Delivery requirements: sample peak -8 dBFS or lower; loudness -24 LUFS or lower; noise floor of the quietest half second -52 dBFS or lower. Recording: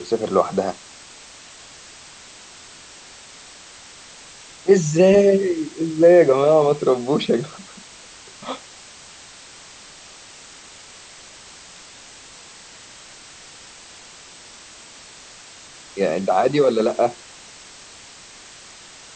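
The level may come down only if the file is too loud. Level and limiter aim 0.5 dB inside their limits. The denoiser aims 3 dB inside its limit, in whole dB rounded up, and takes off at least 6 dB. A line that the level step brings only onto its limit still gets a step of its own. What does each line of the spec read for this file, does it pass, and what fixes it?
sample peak -2.5 dBFS: fail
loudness -18.0 LUFS: fail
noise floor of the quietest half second -43 dBFS: fail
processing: denoiser 6 dB, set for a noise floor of -43 dBFS; gain -6.5 dB

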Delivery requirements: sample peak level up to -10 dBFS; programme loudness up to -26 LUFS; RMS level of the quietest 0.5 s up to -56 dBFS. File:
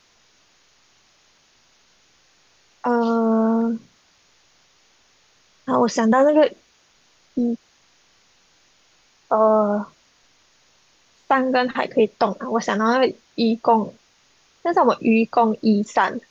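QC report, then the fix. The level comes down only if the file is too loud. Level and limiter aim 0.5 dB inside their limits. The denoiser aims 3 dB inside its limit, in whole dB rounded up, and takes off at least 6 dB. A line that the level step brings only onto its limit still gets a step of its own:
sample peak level -6.0 dBFS: fail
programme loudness -20.0 LUFS: fail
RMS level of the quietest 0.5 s -59 dBFS: OK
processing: gain -6.5 dB

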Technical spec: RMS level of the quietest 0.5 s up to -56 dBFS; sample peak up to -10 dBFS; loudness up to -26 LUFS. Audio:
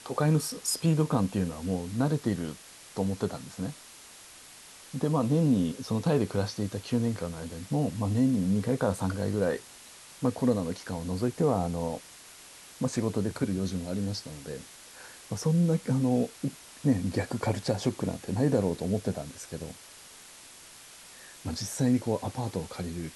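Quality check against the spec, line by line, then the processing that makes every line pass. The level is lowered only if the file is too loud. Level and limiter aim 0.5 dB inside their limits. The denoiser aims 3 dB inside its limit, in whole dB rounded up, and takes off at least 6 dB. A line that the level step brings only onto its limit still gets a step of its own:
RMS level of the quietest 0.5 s -50 dBFS: fail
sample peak -11.5 dBFS: OK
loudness -29.5 LUFS: OK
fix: denoiser 9 dB, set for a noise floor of -50 dBFS

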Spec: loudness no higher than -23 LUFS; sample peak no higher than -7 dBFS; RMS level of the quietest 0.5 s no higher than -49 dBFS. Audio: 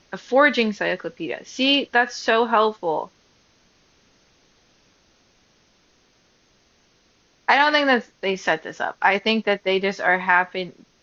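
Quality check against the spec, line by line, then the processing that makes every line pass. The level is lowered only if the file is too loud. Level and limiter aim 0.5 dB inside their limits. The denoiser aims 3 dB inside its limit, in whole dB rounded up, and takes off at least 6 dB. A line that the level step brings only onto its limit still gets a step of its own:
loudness -20.5 LUFS: fail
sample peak -3.0 dBFS: fail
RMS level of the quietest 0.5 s -61 dBFS: OK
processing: gain -3 dB; limiter -7.5 dBFS

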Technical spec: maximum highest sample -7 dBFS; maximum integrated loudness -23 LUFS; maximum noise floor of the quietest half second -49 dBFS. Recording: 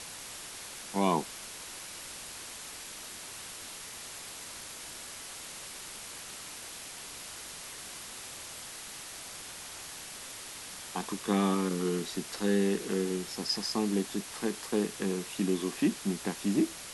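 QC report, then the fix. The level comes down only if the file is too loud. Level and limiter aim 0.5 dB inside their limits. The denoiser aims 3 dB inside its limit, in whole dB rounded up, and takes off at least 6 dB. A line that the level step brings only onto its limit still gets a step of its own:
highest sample -13.5 dBFS: OK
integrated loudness -34.5 LUFS: OK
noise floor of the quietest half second -44 dBFS: fail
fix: denoiser 8 dB, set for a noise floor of -44 dBFS

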